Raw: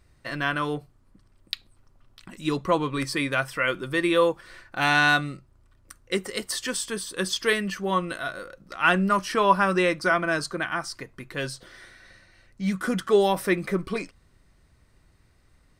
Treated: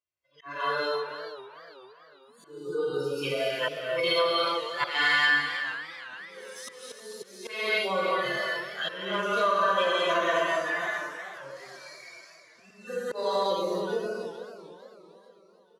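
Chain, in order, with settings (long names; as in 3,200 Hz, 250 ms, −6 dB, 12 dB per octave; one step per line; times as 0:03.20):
harmonic-percussive split with one part muted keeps harmonic
formants moved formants +3 semitones
reverb whose tail is shaped and stops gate 320 ms flat, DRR −6.5 dB
noise reduction from a noise print of the clip's start 30 dB
volume swells 530 ms
comb filter 1.9 ms, depth 47%
downward compressor 6 to 1, threshold −21 dBFS, peak gain reduction 13 dB
meter weighting curve A
single-tap delay 314 ms −11 dB
feedback echo with a swinging delay time 445 ms, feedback 48%, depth 180 cents, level −14.5 dB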